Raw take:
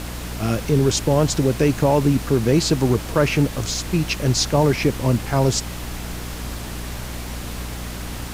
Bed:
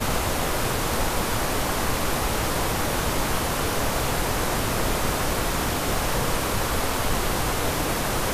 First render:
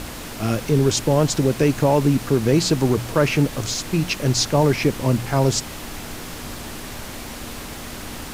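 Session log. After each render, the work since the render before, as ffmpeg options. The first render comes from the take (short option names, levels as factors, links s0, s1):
-af "bandreject=f=60:t=h:w=4,bandreject=f=120:t=h:w=4,bandreject=f=180:t=h:w=4"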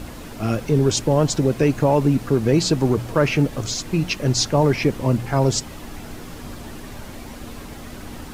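-af "afftdn=nr=8:nf=-34"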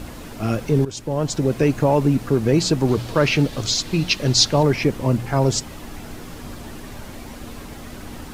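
-filter_complex "[0:a]asettb=1/sr,asplit=3[s0][s1][s2];[s0]atrim=end=2.884[s3];[s1]atrim=start=2.88:end=4.63,asetpts=PTS-STARTPTS,afade=t=in:d=0.004:c=qsin,afade=t=out:st=1.746:d=0.004:c=qsin,equalizer=f=4000:w=1.3:g=8.5[s4];[s2]atrim=start=4.626[s5];[s3][s4]acrossfade=d=0.004:c1=hsin:c2=qsin[s6];[s6][s5]acrossfade=d=0.004:c1=qsin:c2=hsin,asplit=2[s7][s8];[s7]atrim=end=0.85,asetpts=PTS-STARTPTS,afade=t=out:st=0.846:d=0.004:c=hsin:silence=0.16788[s9];[s8]atrim=start=0.85,asetpts=PTS-STARTPTS,afade=t=in:d=0.7:silence=0.16788[s10];[s9][s10]concat=n=2:v=0:a=1"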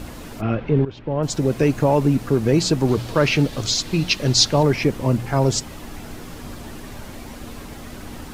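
-filter_complex "[0:a]asplit=3[s0][s1][s2];[s0]afade=t=out:st=0.4:d=0.02[s3];[s1]lowpass=f=3100:w=0.5412,lowpass=f=3100:w=1.3066,afade=t=in:st=0.4:d=0.02,afade=t=out:st=1.22:d=0.02[s4];[s2]afade=t=in:st=1.22:d=0.02[s5];[s3][s4][s5]amix=inputs=3:normalize=0"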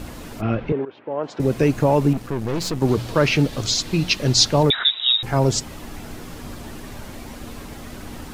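-filter_complex "[0:a]asettb=1/sr,asplit=3[s0][s1][s2];[s0]atrim=end=0.724[s3];[s1]atrim=start=0.72:end=1.4,asetpts=PTS-STARTPTS,afade=t=in:d=0.004:c=qsin,afade=t=out:st=0.676:d=0.004:c=qsin,highpass=390,lowpass=2300[s4];[s2]atrim=start=1.396[s5];[s3][s4]acrossfade=d=0.004:c1=hsin:c2=qsin[s6];[s6][s5]acrossfade=d=0.004:c1=qsin:c2=hsin,asettb=1/sr,asplit=3[s7][s8][s9];[s7]atrim=end=2.134[s10];[s8]atrim=start=2.13:end=2.82,asetpts=PTS-STARTPTS,afade=t=in:d=0.004:c=qsin,afade=t=out:st=0.686:d=0.004:c=qsin,aeval=exprs='(tanh(11.2*val(0)+0.7)-tanh(0.7))/11.2':c=same[s11];[s9]atrim=start=2.816[s12];[s10][s11]acrossfade=d=0.004:c1=hsin:c2=qsin[s13];[s13][s12]acrossfade=d=0.004:c1=qsin:c2=hsin,asettb=1/sr,asplit=3[s14][s15][s16];[s14]atrim=end=4.704[s17];[s15]atrim=start=4.7:end=5.23,asetpts=PTS-STARTPTS,afade=t=in:d=0.004:c=qsin,afade=t=out:st=0.526:d=0.004:c=qsin,lowpass=f=3300:t=q:w=0.5098,lowpass=f=3300:t=q:w=0.6013,lowpass=f=3300:t=q:w=0.9,lowpass=f=3300:t=q:w=2.563,afreqshift=-3900[s18];[s16]atrim=start=5.226[s19];[s17][s18]acrossfade=d=0.004:c1=hsin:c2=qsin[s20];[s20][s19]acrossfade=d=0.004:c1=qsin:c2=hsin"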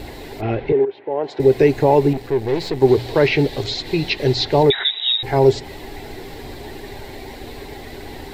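-filter_complex "[0:a]acrossover=split=3300[s0][s1];[s1]acompressor=threshold=0.0178:ratio=4:attack=1:release=60[s2];[s0][s2]amix=inputs=2:normalize=0,equalizer=f=200:t=o:w=0.33:g=-11,equalizer=f=400:t=o:w=0.33:g=12,equalizer=f=800:t=o:w=0.33:g=8,equalizer=f=1250:t=o:w=0.33:g=-10,equalizer=f=2000:t=o:w=0.33:g=8,equalizer=f=4000:t=o:w=0.33:g=8,equalizer=f=6300:t=o:w=0.33:g=-6,equalizer=f=10000:t=o:w=0.33:g=-7"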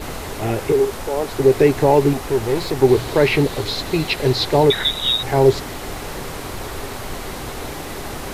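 -filter_complex "[1:a]volume=0.473[s0];[0:a][s0]amix=inputs=2:normalize=0"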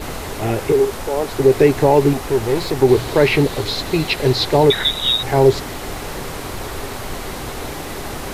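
-af "volume=1.19,alimiter=limit=0.794:level=0:latency=1"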